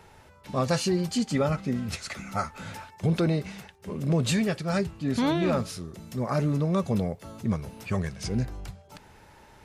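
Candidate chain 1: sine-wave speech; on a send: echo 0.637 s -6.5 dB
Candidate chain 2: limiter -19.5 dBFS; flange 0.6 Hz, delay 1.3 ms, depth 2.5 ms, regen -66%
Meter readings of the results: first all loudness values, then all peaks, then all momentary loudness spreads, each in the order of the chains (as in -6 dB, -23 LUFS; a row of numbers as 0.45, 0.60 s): -27.5, -34.5 LUFS; -10.5, -21.5 dBFS; 13, 13 LU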